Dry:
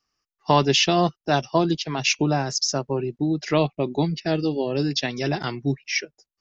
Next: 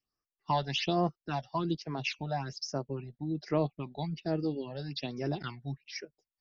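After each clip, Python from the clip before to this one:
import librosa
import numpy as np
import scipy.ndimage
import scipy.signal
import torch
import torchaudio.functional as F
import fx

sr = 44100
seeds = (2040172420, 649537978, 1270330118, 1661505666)

y = scipy.signal.sosfilt(scipy.signal.butter(4, 4800.0, 'lowpass', fs=sr, output='sos'), x)
y = fx.phaser_stages(y, sr, stages=8, low_hz=320.0, high_hz=3600.0, hz=1.2, feedback_pct=25)
y = y * 10.0 ** (-9.0 / 20.0)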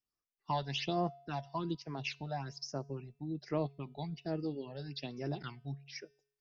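y = fx.comb_fb(x, sr, f0_hz=140.0, decay_s=0.65, harmonics='odd', damping=0.0, mix_pct=40)
y = y * 10.0 ** (-1.0 / 20.0)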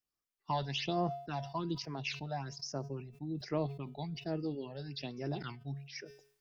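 y = fx.sustainer(x, sr, db_per_s=100.0)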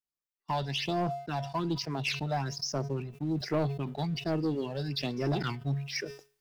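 y = fx.rider(x, sr, range_db=10, speed_s=2.0)
y = fx.leveller(y, sr, passes=2)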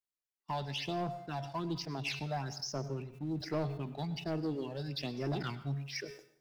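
y = fx.rev_plate(x, sr, seeds[0], rt60_s=0.63, hf_ratio=0.8, predelay_ms=85, drr_db=14.5)
y = y * 10.0 ** (-5.5 / 20.0)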